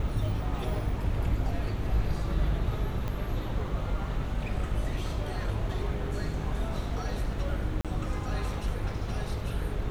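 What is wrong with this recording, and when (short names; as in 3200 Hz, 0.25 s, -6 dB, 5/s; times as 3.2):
buzz 50 Hz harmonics 13 -35 dBFS
3.08 pop -21 dBFS
7.81–7.85 gap 37 ms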